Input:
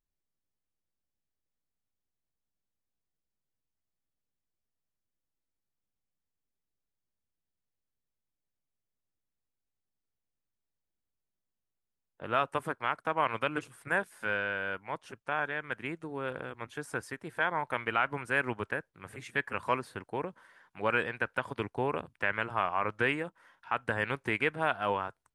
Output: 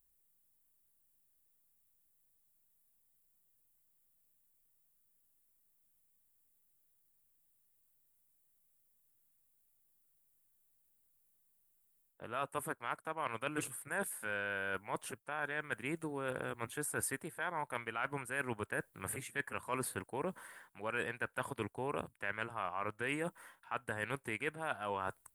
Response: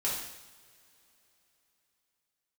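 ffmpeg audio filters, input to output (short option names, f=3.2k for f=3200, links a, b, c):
-af "areverse,acompressor=threshold=-40dB:ratio=6,areverse,aexciter=amount=7.2:drive=3.4:freq=7.9k,volume=4.5dB"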